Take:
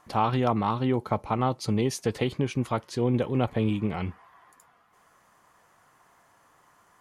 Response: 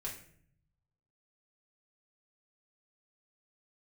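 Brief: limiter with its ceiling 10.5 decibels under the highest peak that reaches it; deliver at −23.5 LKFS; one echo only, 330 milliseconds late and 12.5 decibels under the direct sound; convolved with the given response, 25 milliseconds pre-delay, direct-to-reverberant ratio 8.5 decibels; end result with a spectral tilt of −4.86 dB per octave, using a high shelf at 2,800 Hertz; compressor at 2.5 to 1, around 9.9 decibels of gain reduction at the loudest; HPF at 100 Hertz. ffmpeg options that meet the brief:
-filter_complex "[0:a]highpass=100,highshelf=frequency=2800:gain=8.5,acompressor=threshold=-35dB:ratio=2.5,alimiter=level_in=3dB:limit=-24dB:level=0:latency=1,volume=-3dB,aecho=1:1:330:0.237,asplit=2[link_01][link_02];[1:a]atrim=start_sample=2205,adelay=25[link_03];[link_02][link_03]afir=irnorm=-1:irlink=0,volume=-8dB[link_04];[link_01][link_04]amix=inputs=2:normalize=0,volume=14.5dB"

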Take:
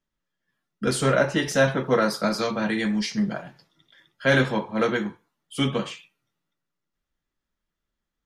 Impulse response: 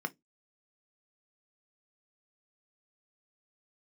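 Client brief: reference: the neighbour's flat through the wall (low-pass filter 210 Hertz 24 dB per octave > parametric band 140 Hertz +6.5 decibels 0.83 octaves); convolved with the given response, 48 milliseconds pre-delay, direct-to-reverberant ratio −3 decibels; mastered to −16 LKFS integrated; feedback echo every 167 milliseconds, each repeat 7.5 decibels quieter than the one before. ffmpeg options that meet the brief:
-filter_complex "[0:a]aecho=1:1:167|334|501|668|835:0.422|0.177|0.0744|0.0312|0.0131,asplit=2[link_01][link_02];[1:a]atrim=start_sample=2205,adelay=48[link_03];[link_02][link_03]afir=irnorm=-1:irlink=0,volume=-0.5dB[link_04];[link_01][link_04]amix=inputs=2:normalize=0,lowpass=frequency=210:width=0.5412,lowpass=frequency=210:width=1.3066,equalizer=frequency=140:width_type=o:width=0.83:gain=6.5,volume=8dB"

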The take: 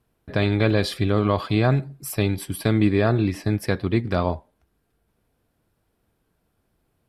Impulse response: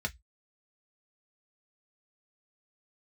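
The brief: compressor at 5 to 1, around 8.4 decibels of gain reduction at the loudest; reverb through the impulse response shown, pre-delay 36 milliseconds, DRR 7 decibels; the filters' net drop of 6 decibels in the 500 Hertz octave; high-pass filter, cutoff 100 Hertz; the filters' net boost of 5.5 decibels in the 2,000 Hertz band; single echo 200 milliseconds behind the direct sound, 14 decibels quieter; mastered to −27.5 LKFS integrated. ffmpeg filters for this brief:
-filter_complex "[0:a]highpass=100,equalizer=frequency=500:width_type=o:gain=-8.5,equalizer=frequency=2000:width_type=o:gain=7.5,acompressor=threshold=-25dB:ratio=5,aecho=1:1:200:0.2,asplit=2[link_01][link_02];[1:a]atrim=start_sample=2205,adelay=36[link_03];[link_02][link_03]afir=irnorm=-1:irlink=0,volume=-11dB[link_04];[link_01][link_04]amix=inputs=2:normalize=0,volume=2dB"

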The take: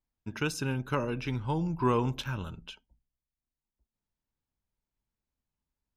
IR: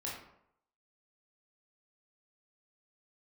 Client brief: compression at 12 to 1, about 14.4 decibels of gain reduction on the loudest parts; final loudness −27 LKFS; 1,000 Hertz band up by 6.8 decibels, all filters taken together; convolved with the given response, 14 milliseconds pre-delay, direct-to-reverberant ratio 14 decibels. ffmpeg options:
-filter_complex "[0:a]equalizer=frequency=1000:width_type=o:gain=7.5,acompressor=threshold=-33dB:ratio=12,asplit=2[link_01][link_02];[1:a]atrim=start_sample=2205,adelay=14[link_03];[link_02][link_03]afir=irnorm=-1:irlink=0,volume=-15dB[link_04];[link_01][link_04]amix=inputs=2:normalize=0,volume=11.5dB"

